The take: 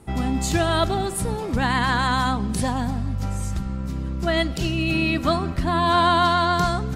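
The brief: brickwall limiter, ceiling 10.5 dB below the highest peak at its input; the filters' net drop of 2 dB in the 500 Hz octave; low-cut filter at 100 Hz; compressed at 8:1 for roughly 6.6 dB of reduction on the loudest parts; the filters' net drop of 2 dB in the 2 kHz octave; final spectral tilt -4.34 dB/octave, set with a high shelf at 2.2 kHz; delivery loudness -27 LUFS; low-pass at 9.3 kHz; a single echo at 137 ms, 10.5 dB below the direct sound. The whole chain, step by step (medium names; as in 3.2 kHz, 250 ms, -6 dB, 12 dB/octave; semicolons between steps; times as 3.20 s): high-pass 100 Hz; low-pass 9.3 kHz; peaking EQ 500 Hz -3.5 dB; peaking EQ 2 kHz -6.5 dB; treble shelf 2.2 kHz +7 dB; compression 8:1, threshold -22 dBFS; peak limiter -19 dBFS; delay 137 ms -10.5 dB; trim +1 dB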